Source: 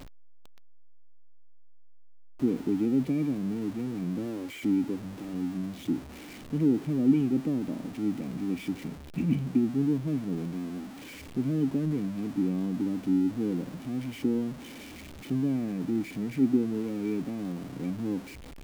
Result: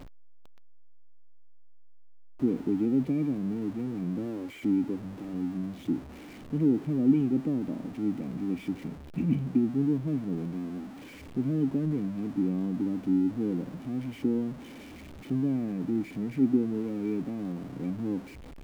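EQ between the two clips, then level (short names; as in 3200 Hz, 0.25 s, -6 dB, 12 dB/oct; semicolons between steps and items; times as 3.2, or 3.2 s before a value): high shelf 2400 Hz -8 dB; 0.0 dB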